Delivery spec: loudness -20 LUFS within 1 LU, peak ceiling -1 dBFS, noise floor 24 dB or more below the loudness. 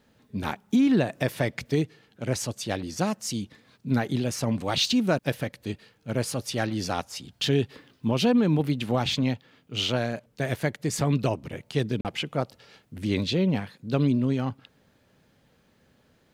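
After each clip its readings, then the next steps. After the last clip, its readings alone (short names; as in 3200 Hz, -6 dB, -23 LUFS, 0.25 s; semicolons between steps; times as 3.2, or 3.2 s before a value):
dropouts 1; longest dropout 38 ms; loudness -27.0 LUFS; peak -11.0 dBFS; loudness target -20.0 LUFS
-> interpolate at 12.01, 38 ms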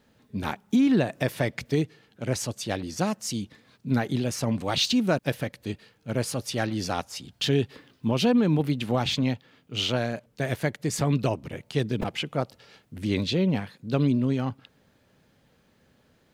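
dropouts 0; loudness -27.0 LUFS; peak -11.0 dBFS; loudness target -20.0 LUFS
-> gain +7 dB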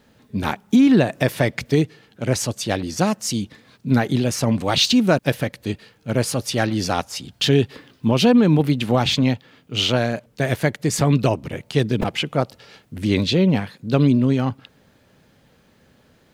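loudness -20.0 LUFS; peak -4.0 dBFS; noise floor -57 dBFS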